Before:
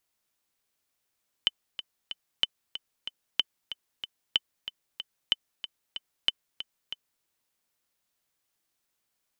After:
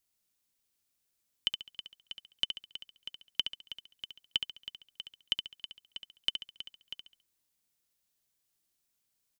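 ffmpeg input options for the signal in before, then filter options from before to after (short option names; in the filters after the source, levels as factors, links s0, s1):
-f lavfi -i "aevalsrc='pow(10,(-9-12.5*gte(mod(t,3*60/187),60/187))/20)*sin(2*PI*3040*mod(t,60/187))*exp(-6.91*mod(t,60/187)/0.03)':d=5.77:s=44100"
-af "equalizer=f=1000:w=0.36:g=-8.5,aecho=1:1:69|138|207|276:0.447|0.165|0.0612|0.0226"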